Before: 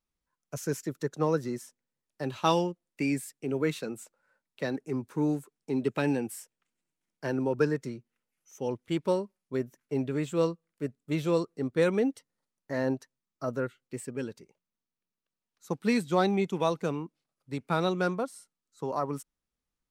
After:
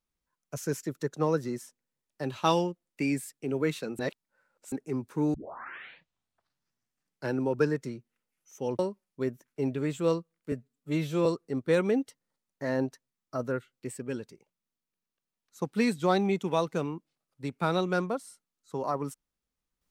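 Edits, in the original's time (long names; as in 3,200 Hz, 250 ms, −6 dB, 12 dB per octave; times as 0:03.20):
0:03.99–0:04.72: reverse
0:05.34: tape start 2.02 s
0:08.79–0:09.12: remove
0:10.85–0:11.34: time-stretch 1.5×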